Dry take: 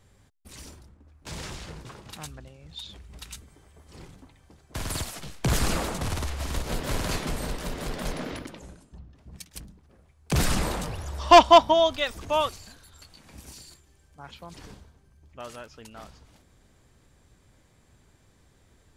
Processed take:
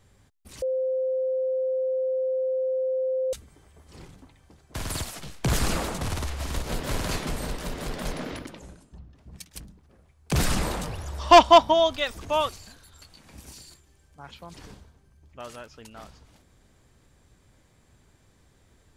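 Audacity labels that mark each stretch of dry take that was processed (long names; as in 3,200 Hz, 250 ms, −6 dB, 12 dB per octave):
0.620000	3.330000	beep over 520 Hz −23 dBFS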